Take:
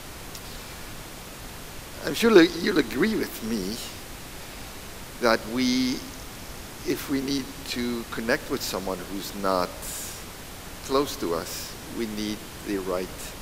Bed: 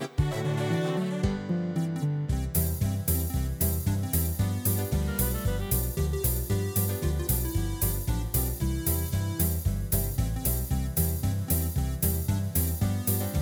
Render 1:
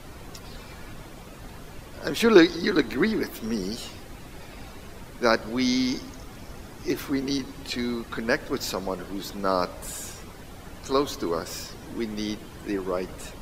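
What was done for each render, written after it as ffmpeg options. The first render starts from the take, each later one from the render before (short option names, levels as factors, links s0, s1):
-af "afftdn=nr=10:nf=-41"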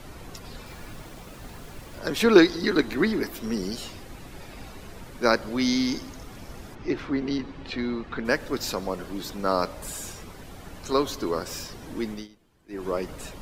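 -filter_complex "[0:a]asettb=1/sr,asplit=3[s0][s1][s2];[s0]atrim=end=0.664[s3];[s1]atrim=start=0.66:end=1.99,asetpts=PTS-STARTPTS,afade=t=in:d=0.004:c=qsin,afade=t=out:st=1.326:d=0.004:c=qsin,acrusher=bits=7:mix=0:aa=0.5[s4];[s2]atrim=start=1.986[s5];[s3][s4]acrossfade=d=0.004:c1=hsin:c2=qsin[s6];[s6][s5]acrossfade=d=0.004:c1=qsin:c2=hsin,asplit=3[s7][s8][s9];[s7]afade=t=out:st=6.74:d=0.02[s10];[s8]lowpass=3200,afade=t=in:st=6.74:d=0.02,afade=t=out:st=8.24:d=0.02[s11];[s9]afade=t=in:st=8.24:d=0.02[s12];[s10][s11][s12]amix=inputs=3:normalize=0,asplit=3[s13][s14][s15];[s13]atrim=end=12.28,asetpts=PTS-STARTPTS,afade=t=out:st=12.1:d=0.18:silence=0.0749894[s16];[s14]atrim=start=12.28:end=12.68,asetpts=PTS-STARTPTS,volume=0.075[s17];[s15]atrim=start=12.68,asetpts=PTS-STARTPTS,afade=t=in:d=0.18:silence=0.0749894[s18];[s16][s17][s18]concat=n=3:v=0:a=1"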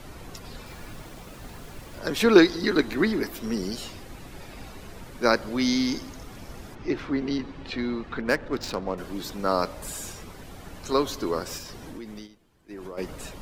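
-filter_complex "[0:a]asettb=1/sr,asplit=3[s0][s1][s2];[s0]atrim=end=8.214[s3];[s1]atrim=start=8.21:end=8.98,asetpts=PTS-STARTPTS,afade=t=in:d=0.004:c=qsin,afade=t=out:st=0.766:d=0.004:c=qsin,adynamicsmooth=sensitivity=5.5:basefreq=1800[s4];[s2]atrim=start=8.976[s5];[s3][s4]acrossfade=d=0.004:c1=hsin:c2=qsin[s6];[s6][s5]acrossfade=d=0.004:c1=qsin:c2=hsin,asplit=3[s7][s8][s9];[s7]afade=t=out:st=11.57:d=0.02[s10];[s8]acompressor=threshold=0.0178:ratio=6:attack=3.2:release=140:knee=1:detection=peak,afade=t=in:st=11.57:d=0.02,afade=t=out:st=12.97:d=0.02[s11];[s9]afade=t=in:st=12.97:d=0.02[s12];[s10][s11][s12]amix=inputs=3:normalize=0"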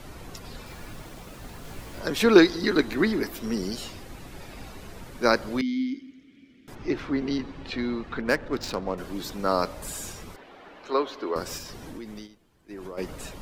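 -filter_complex "[0:a]asettb=1/sr,asplit=3[s0][s1][s2];[s0]atrim=end=1.634[s3];[s1]atrim=start=1.63:end=2.05,asetpts=PTS-STARTPTS,afade=t=in:d=0.004:c=qsin,afade=t=out:st=0.416:d=0.004:c=qsin,asplit=2[s4][s5];[s5]adelay=18,volume=0.708[s6];[s4][s6]amix=inputs=2:normalize=0,atrim=end_sample=18522[s7];[s2]atrim=start=2.046[s8];[s3][s7]acrossfade=d=0.004:c1=hsin:c2=qsin[s9];[s9][s8]acrossfade=d=0.004:c1=qsin:c2=hsin,asettb=1/sr,asplit=3[s10][s11][s12];[s10]atrim=end=5.614[s13];[s11]atrim=start=5.61:end=6.68,asetpts=PTS-STARTPTS,afade=t=in:d=0.004:c=qsin,afade=t=out:st=1.066:d=0.004:c=qsin,asplit=3[s14][s15][s16];[s14]bandpass=f=270:t=q:w=8,volume=1[s17];[s15]bandpass=f=2290:t=q:w=8,volume=0.501[s18];[s16]bandpass=f=3010:t=q:w=8,volume=0.355[s19];[s17][s18][s19]amix=inputs=3:normalize=0[s20];[s12]atrim=start=6.676[s21];[s13][s20]acrossfade=d=0.004:c1=hsin:c2=qsin[s22];[s22][s21]acrossfade=d=0.004:c1=qsin:c2=hsin,asettb=1/sr,asplit=3[s23][s24][s25];[s23]atrim=end=10.364[s26];[s24]atrim=start=10.36:end=11.36,asetpts=PTS-STARTPTS,afade=t=in:d=0.004:c=qsin,afade=t=out:st=0.996:d=0.004:c=qsin,acrossover=split=280 3800:gain=0.0708 1 0.0631[s27][s28][s29];[s27][s28][s29]amix=inputs=3:normalize=0[s30];[s25]atrim=start=11.356[s31];[s26][s30]acrossfade=d=0.004:c1=hsin:c2=qsin[s32];[s32][s31]acrossfade=d=0.004:c1=qsin:c2=hsin"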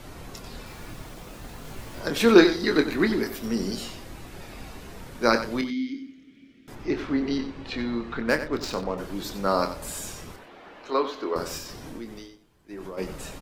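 -filter_complex "[0:a]asplit=2[s0][s1];[s1]adelay=26,volume=0.376[s2];[s0][s2]amix=inputs=2:normalize=0,asplit=2[s3][s4];[s4]aecho=0:1:92:0.266[s5];[s3][s5]amix=inputs=2:normalize=0"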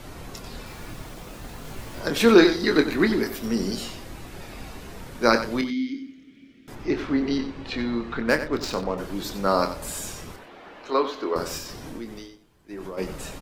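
-af "volume=1.26,alimiter=limit=0.708:level=0:latency=1"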